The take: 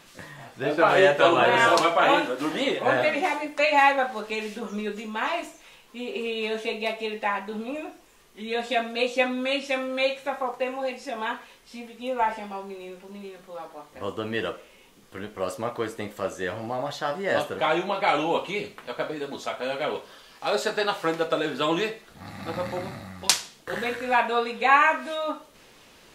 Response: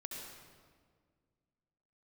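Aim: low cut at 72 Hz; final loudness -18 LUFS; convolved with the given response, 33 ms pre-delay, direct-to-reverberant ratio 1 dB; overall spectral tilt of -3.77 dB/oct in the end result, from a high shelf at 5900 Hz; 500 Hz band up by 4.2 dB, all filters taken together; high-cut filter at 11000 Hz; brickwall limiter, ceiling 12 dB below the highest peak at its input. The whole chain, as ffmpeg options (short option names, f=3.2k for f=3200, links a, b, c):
-filter_complex "[0:a]highpass=72,lowpass=11k,equalizer=f=500:t=o:g=5,highshelf=f=5.9k:g=5.5,alimiter=limit=-12dB:level=0:latency=1,asplit=2[a][b];[1:a]atrim=start_sample=2205,adelay=33[c];[b][c]afir=irnorm=-1:irlink=0,volume=0.5dB[d];[a][d]amix=inputs=2:normalize=0,volume=5dB"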